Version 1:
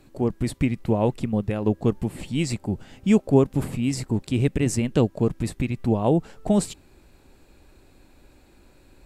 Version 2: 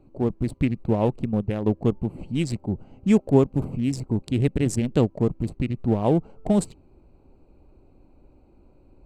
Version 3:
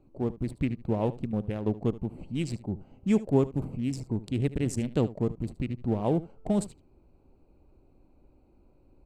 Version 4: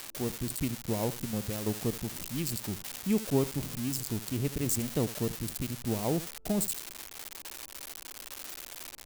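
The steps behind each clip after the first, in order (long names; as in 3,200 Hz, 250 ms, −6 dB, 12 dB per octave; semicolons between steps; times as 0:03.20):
adaptive Wiener filter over 25 samples
single-tap delay 74 ms −17 dB; level −6 dB
spike at every zero crossing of −18.5 dBFS; level −4 dB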